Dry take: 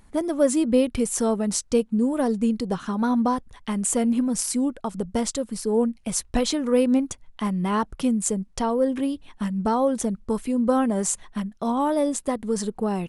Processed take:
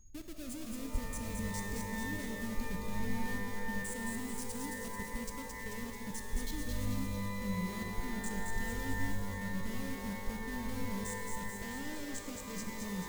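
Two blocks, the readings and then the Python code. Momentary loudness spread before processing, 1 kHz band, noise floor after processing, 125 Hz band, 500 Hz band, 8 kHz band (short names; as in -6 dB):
7 LU, -15.5 dB, -44 dBFS, -6.5 dB, -21.5 dB, -15.5 dB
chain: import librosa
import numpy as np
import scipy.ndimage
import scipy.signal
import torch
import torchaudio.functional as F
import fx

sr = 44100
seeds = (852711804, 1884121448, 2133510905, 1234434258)

y = fx.halfwave_hold(x, sr)
y = fx.spec_box(y, sr, start_s=11.41, length_s=1.22, low_hz=250.0, high_hz=8100.0, gain_db=7)
y = fx.high_shelf(y, sr, hz=9700.0, db=4.5)
y = y + 10.0 ** (-43.0 / 20.0) * np.sin(2.0 * np.pi * 6600.0 * np.arange(len(y)) / sr)
y = fx.level_steps(y, sr, step_db=23)
y = fx.tone_stack(y, sr, knobs='10-0-1')
y = fx.vibrato(y, sr, rate_hz=3.1, depth_cents=13.0)
y = fx.echo_wet_highpass(y, sr, ms=219, feedback_pct=63, hz=3200.0, wet_db=-3.5)
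y = fx.rev_shimmer(y, sr, seeds[0], rt60_s=3.5, semitones=12, shimmer_db=-2, drr_db=4.5)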